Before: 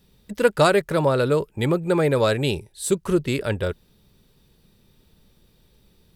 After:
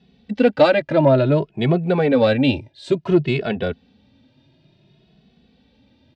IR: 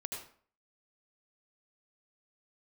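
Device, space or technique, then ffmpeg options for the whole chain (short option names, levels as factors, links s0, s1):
barber-pole flanger into a guitar amplifier: -filter_complex "[0:a]asettb=1/sr,asplit=3[s0][s1][s2];[s0]atrim=end=0.934[s3];[s1]atrim=start=0.93:end=1.36,asetpts=PTS-STARTPTS,afade=t=in:d=0.004:c=qsin,afade=t=out:st=0.426:d=0.004:c=qsin,highshelf=f=3600:g=-6.5[s4];[s2]atrim=start=1.356[s5];[s3][s4]acrossfade=d=0.004:c1=hsin:c2=qsin[s6];[s6][s5]acrossfade=d=0.004:c1=qsin:c2=hsin,asplit=2[s7][s8];[s8]adelay=2.3,afreqshift=0.57[s9];[s7][s9]amix=inputs=2:normalize=1,asoftclip=type=tanh:threshold=0.282,highpass=87,equalizer=f=140:t=q:w=4:g=3,equalizer=f=260:t=q:w=4:g=10,equalizer=f=450:t=q:w=4:g=-4,equalizer=f=670:t=q:w=4:g=9,equalizer=f=1200:t=q:w=4:g=-7,equalizer=f=2700:t=q:w=4:g=3,lowpass=f=4400:w=0.5412,lowpass=f=4400:w=1.3066,volume=1.88"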